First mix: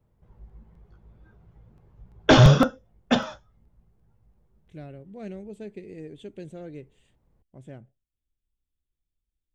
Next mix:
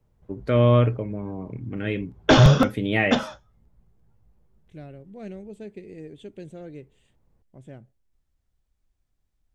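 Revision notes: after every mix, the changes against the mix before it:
first voice: unmuted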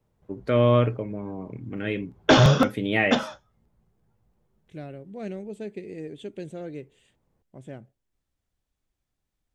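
second voice +4.5 dB; master: add bass shelf 86 Hz -12 dB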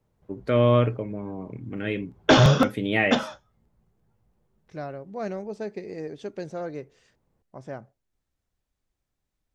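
second voice: remove FFT filter 340 Hz 0 dB, 1.1 kHz -14 dB, 3.3 kHz +6 dB, 5.3 kHz -16 dB, 8 kHz +7 dB

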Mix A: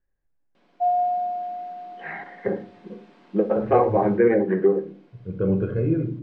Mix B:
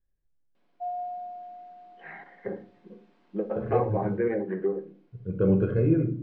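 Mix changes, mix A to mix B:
first voice -9.0 dB; background -12.0 dB

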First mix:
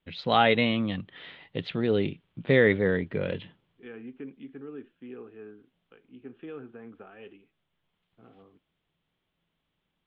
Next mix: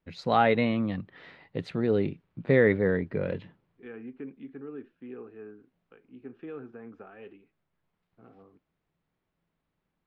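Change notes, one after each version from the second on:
second voice: remove distance through air 280 m; master: remove resonant low-pass 3.3 kHz, resonance Q 4.8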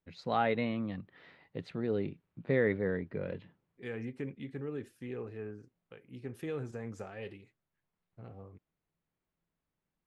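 first voice -7.5 dB; second voice: remove cabinet simulation 260–2500 Hz, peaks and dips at 260 Hz +5 dB, 560 Hz -8 dB, 930 Hz -4 dB, 1.4 kHz +3 dB, 2 kHz -10 dB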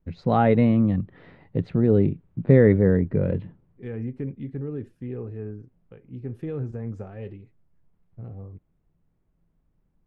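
first voice +7.0 dB; master: add tilt EQ -4 dB/octave

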